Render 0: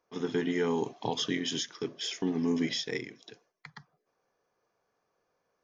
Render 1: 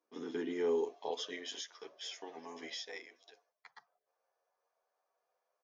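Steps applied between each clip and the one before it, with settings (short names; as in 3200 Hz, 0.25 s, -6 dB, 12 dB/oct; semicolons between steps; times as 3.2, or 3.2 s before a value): high-pass sweep 270 Hz -> 640 Hz, 0.03–1.59; endless flanger 10.3 ms +0.42 Hz; gain -6.5 dB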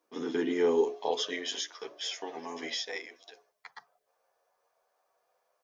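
notches 60/120/180/240/300/360/420 Hz; gain +8.5 dB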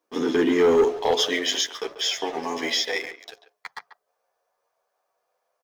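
sample leveller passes 2; speakerphone echo 0.14 s, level -12 dB; gain +3.5 dB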